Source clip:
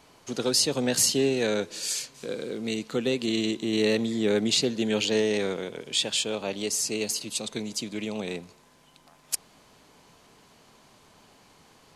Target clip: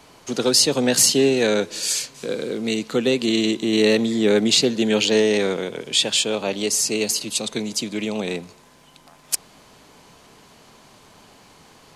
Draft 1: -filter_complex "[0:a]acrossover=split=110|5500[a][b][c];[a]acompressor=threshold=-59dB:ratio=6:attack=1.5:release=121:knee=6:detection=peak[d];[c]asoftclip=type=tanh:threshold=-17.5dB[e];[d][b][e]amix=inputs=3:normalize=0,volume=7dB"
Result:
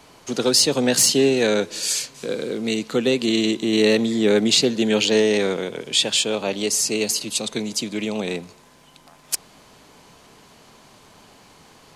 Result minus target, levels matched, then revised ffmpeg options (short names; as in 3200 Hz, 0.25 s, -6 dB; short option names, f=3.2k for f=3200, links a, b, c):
soft clip: distortion +9 dB
-filter_complex "[0:a]acrossover=split=110|5500[a][b][c];[a]acompressor=threshold=-59dB:ratio=6:attack=1.5:release=121:knee=6:detection=peak[d];[c]asoftclip=type=tanh:threshold=-10dB[e];[d][b][e]amix=inputs=3:normalize=0,volume=7dB"